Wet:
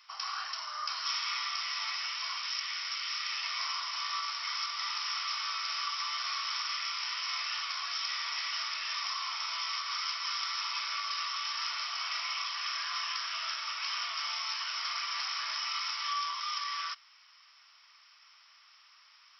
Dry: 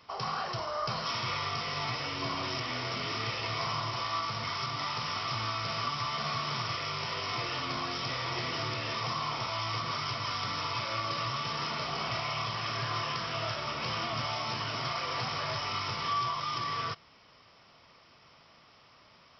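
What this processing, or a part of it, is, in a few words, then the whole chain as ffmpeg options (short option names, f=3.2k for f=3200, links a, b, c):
headphones lying on a table: -filter_complex "[0:a]highpass=f=1.2k:w=0.5412,highpass=f=1.2k:w=1.3066,equalizer=f=5.5k:t=o:w=0.25:g=6,asettb=1/sr,asplit=3[a][b][c];[a]atrim=end=2.384[d];[b]atrim=start=2.38:end=3.31,asetpts=PTS-STARTPTS,afade=t=in:d=0.004:c=qsin,afade=t=out:st=0.926:d=0.004:c=qsin,highpass=f=1.1k:p=1[e];[c]atrim=start=3.306[f];[d][e]acrossfade=d=0.004:c1=hsin:c2=qsin[g];[g][f]acrossfade=d=0.004:c1=qsin:c2=hsin"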